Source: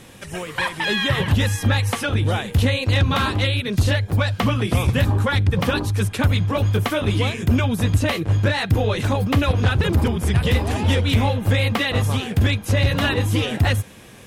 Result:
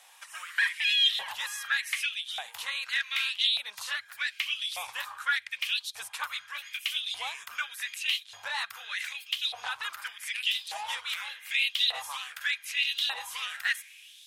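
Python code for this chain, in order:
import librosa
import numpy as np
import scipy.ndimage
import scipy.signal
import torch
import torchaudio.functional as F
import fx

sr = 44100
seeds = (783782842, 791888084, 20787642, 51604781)

y = fx.filter_lfo_highpass(x, sr, shape='saw_up', hz=0.84, low_hz=700.0, high_hz=4000.0, q=4.5)
y = fx.tone_stack(y, sr, knobs='10-0-10')
y = y * librosa.db_to_amplitude(-6.5)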